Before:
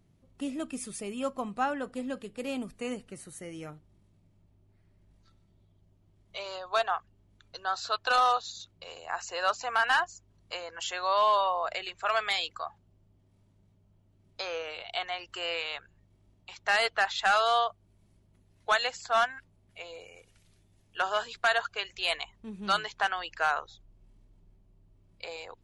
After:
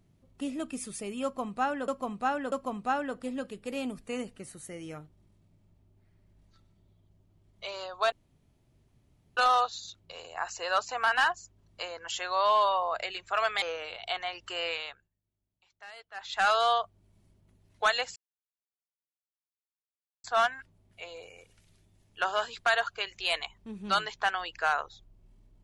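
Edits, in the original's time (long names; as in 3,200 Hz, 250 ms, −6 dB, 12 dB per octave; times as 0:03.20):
0:01.24–0:01.88: repeat, 3 plays
0:06.84–0:08.09: fill with room tone
0:12.34–0:14.48: remove
0:15.60–0:17.34: duck −22 dB, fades 0.35 s
0:19.02: splice in silence 2.08 s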